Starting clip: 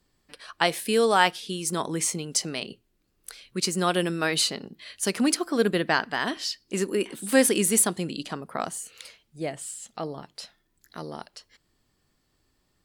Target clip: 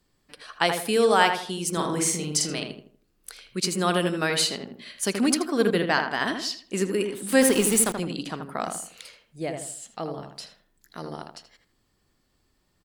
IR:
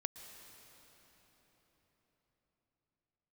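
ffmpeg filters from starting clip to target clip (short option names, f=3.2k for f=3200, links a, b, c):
-filter_complex "[0:a]asettb=1/sr,asplit=3[a][b][c];[a]atrim=end=1.724[d];[b]atrim=start=1.72:end=2.59,asetpts=PTS-STARTPTS,afade=t=in:d=0.004:c=qsin,afade=t=out:st=0.866:d=0.004:c=qsin,asplit=2[e][f];[f]adelay=47,volume=-2.5dB[g];[e][g]amix=inputs=2:normalize=0,atrim=end_sample=38367[h];[c]atrim=start=2.586[i];[d][h]acrossfade=d=0.004:c1=hsin:c2=qsin[j];[j][i]acrossfade=d=0.004:c1=qsin:c2=hsin,asettb=1/sr,asplit=3[k][l][m];[k]atrim=end=7.414[n];[l]atrim=start=7.41:end=7.98,asetpts=PTS-STARTPTS,afade=t=in:d=0.004:c=qsin,afade=t=out:st=0.566:d=0.004:c=qsin,aeval=exprs='val(0)*gte(abs(val(0)),0.0422)':c=same[o];[m]atrim=start=7.976[p];[n][o]acrossfade=d=0.004:c1=hsin:c2=qsin[q];[q][p]acrossfade=d=0.004:c1=qsin:c2=hsin,asplit=2[r][s];[s]adelay=80,lowpass=f=1.9k:p=1,volume=-5dB,asplit=2[t][u];[u]adelay=80,lowpass=f=1.9k:p=1,volume=0.37,asplit=2[v][w];[w]adelay=80,lowpass=f=1.9k:p=1,volume=0.37,asplit=2[x][y];[y]adelay=80,lowpass=f=1.9k:p=1,volume=0.37,asplit=2[z][aa];[aa]adelay=80,lowpass=f=1.9k:p=1,volume=0.37[ab];[r][t][v][x][z][ab]amix=inputs=6:normalize=0"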